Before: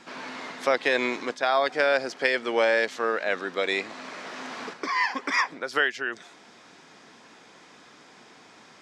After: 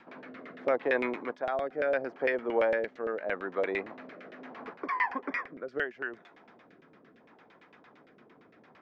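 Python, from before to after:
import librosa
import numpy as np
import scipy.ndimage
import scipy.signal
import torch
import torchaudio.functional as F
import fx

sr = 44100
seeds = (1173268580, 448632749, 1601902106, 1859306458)

y = fx.dynamic_eq(x, sr, hz=4000.0, q=1.2, threshold_db=-43.0, ratio=4.0, max_db=-4)
y = fx.filter_lfo_lowpass(y, sr, shape='saw_down', hz=8.8, low_hz=460.0, high_hz=2800.0, q=1.2)
y = fx.rotary(y, sr, hz=0.75)
y = y * librosa.db_to_amplitude(-3.0)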